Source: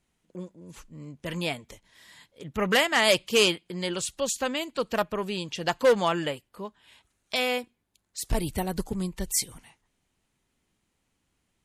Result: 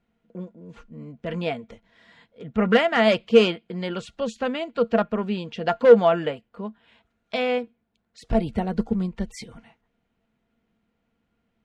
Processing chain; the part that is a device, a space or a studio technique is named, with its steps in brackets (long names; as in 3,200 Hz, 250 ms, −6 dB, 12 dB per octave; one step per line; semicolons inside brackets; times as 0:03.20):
inside a cardboard box (low-pass filter 2,900 Hz 12 dB per octave; hollow resonant body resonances 220/470/670/1,400 Hz, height 13 dB, ringing for 95 ms)